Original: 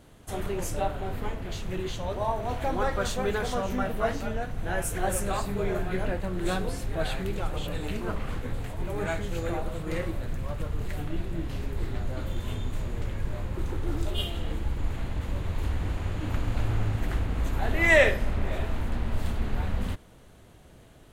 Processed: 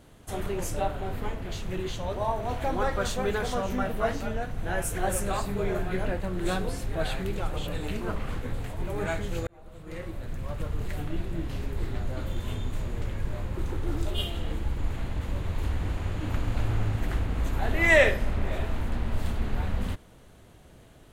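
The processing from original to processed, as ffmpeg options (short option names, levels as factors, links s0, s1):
-filter_complex "[0:a]asplit=2[s0][s1];[s0]atrim=end=9.47,asetpts=PTS-STARTPTS,afade=t=out:st=9.466:d=0.004:c=hsin[s2];[s1]atrim=start=9.47,asetpts=PTS-STARTPTS,afade=t=in:d=1.18[s3];[s2][s3]concat=n=2:v=0:a=1"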